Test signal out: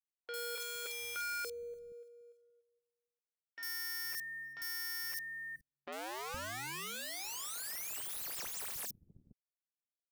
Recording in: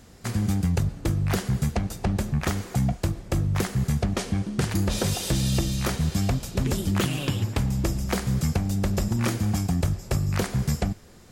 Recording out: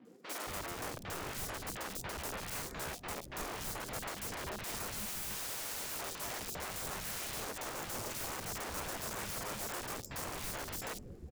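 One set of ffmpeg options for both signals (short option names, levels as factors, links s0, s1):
-filter_complex "[0:a]afftdn=nr=23:nf=-47,areverse,acompressor=threshold=0.02:ratio=6,areverse,aeval=exprs='(mod(106*val(0)+1,2)-1)/106':c=same,asplit=2[s0][s1];[s1]acrusher=bits=2:mode=log:mix=0:aa=0.000001,volume=0.299[s2];[s0][s2]amix=inputs=2:normalize=0,acrossover=split=250|3700[s3][s4][s5];[s5]adelay=50[s6];[s3]adelay=470[s7];[s7][s4][s6]amix=inputs=3:normalize=0,volume=1.33"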